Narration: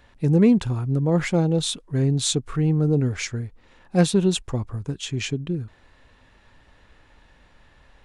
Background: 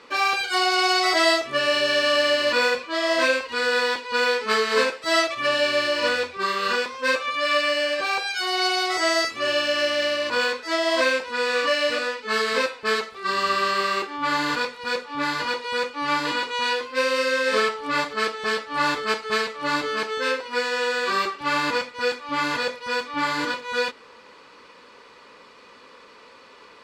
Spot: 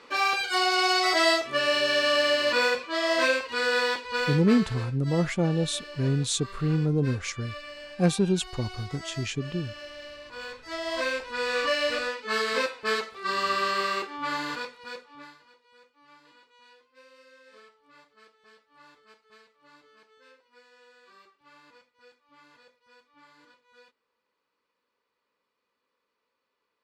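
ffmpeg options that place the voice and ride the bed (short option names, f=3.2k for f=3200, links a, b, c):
-filter_complex "[0:a]adelay=4050,volume=-4.5dB[a];[1:a]volume=12.5dB,afade=t=out:st=3.89:d=0.88:silence=0.149624,afade=t=in:st=10.31:d=1.33:silence=0.16788,afade=t=out:st=13.85:d=1.55:silence=0.0375837[b];[a][b]amix=inputs=2:normalize=0"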